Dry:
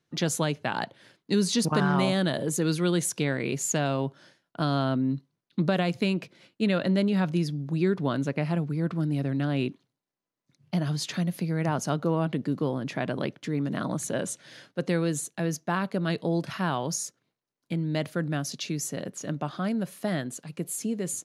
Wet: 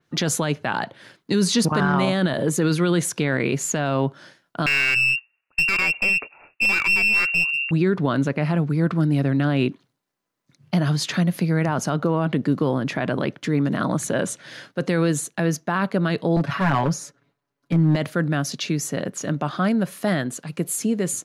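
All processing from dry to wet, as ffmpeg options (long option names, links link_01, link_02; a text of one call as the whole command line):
ffmpeg -i in.wav -filter_complex "[0:a]asettb=1/sr,asplit=3[link_01][link_02][link_03];[link_01]atrim=end=4.664[link_04];[link_02]atrim=start=4.66:end=7.71,asetpts=PTS-STARTPTS,afade=type=in:duration=0.004:curve=qsin,afade=type=out:start_time=3.046:duration=0.004:curve=qsin,lowpass=frequency=2500:width_type=q:width=0.5098,lowpass=frequency=2500:width_type=q:width=0.6013,lowpass=frequency=2500:width_type=q:width=0.9,lowpass=frequency=2500:width_type=q:width=2.563,afreqshift=-2900,aeval=exprs='clip(val(0),-1,0.0447)':channel_layout=same[link_05];[link_03]atrim=start=7.706[link_06];[link_04][link_05]acrossfade=duration=0.004:curve1=hsin:curve2=qsin[link_07];[link_07][link_06]acrossfade=duration=0.004:curve1=qsin:curve2=hsin,asettb=1/sr,asplit=3[link_08][link_09][link_10];[link_08]atrim=end=16.364[link_11];[link_09]atrim=start=16.36:end=17.96,asetpts=PTS-STARTPTS,afade=type=in:duration=0.004:curve=qsin,afade=type=out:start_time=1.596:duration=0.004:curve=qsin,highshelf=frequency=3100:gain=-11.5,aecho=1:1:7.1:0.96,atrim=end_sample=70560,aeval=exprs='clip(val(0),-1,0.0596)':channel_layout=same[link_12];[link_10]atrim=start=17.956[link_13];[link_11][link_12]acrossfade=duration=0.004:curve1=hsin:curve2=qsin[link_14];[link_14][link_13]acrossfade=duration=0.004:curve1=qsin:curve2=hsin,equalizer=frequency=1400:width=1.2:gain=3.5,alimiter=limit=-18dB:level=0:latency=1:release=19,adynamicequalizer=threshold=0.00501:dfrequency=3900:dqfactor=0.7:tfrequency=3900:tqfactor=0.7:attack=5:release=100:ratio=0.375:range=2.5:mode=cutabove:tftype=highshelf,volume=7.5dB" out.wav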